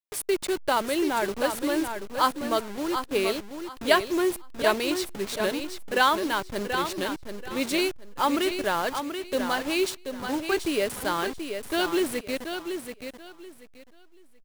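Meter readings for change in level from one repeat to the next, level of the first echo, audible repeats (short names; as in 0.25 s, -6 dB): -13.0 dB, -7.5 dB, 3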